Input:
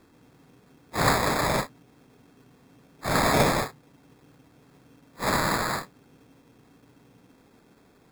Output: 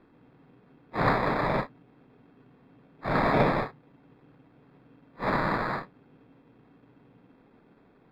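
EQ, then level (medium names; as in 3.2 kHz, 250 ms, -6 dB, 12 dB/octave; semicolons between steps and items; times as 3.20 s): distance through air 340 m; peaking EQ 76 Hz -14.5 dB 0.39 oct; peaking EQ 6.1 kHz -6.5 dB 0.42 oct; 0.0 dB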